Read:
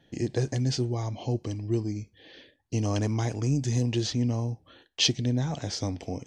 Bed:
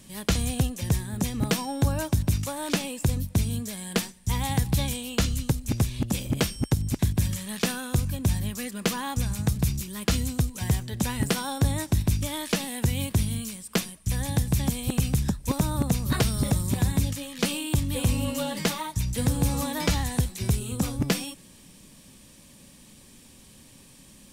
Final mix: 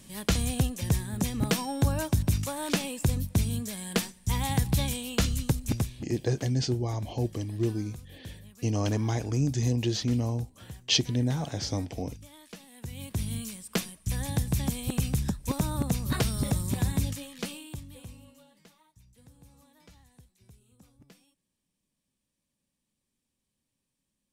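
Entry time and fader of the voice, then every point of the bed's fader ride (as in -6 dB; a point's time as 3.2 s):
5.90 s, -0.5 dB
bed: 5.74 s -1.5 dB
6.13 s -20 dB
12.67 s -20 dB
13.34 s -3.5 dB
17.13 s -3.5 dB
18.58 s -31.5 dB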